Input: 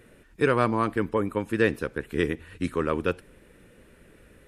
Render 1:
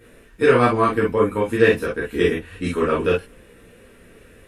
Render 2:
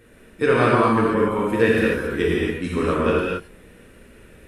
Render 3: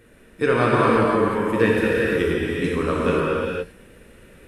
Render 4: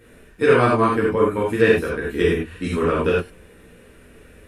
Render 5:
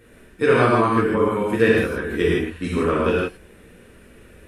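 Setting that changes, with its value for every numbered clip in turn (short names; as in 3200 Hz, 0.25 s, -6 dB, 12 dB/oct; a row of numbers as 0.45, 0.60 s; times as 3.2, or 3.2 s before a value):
non-linear reverb, gate: 80, 300, 540, 120, 190 ms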